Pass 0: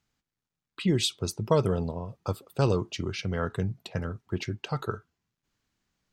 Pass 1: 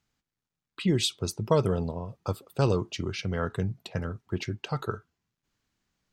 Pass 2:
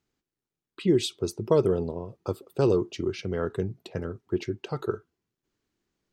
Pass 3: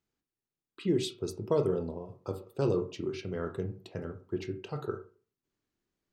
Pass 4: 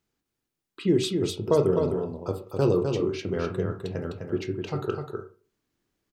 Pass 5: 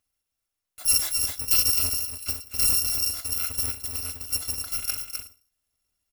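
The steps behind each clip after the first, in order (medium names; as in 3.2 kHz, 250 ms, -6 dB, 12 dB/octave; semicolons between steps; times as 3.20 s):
no audible change
peaking EQ 370 Hz +12 dB 0.89 oct; trim -4 dB
reverberation RT60 0.35 s, pre-delay 18 ms, DRR 6.5 dB; trim -6.5 dB
delay 255 ms -5.5 dB; trim +6 dB
bit-reversed sample order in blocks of 256 samples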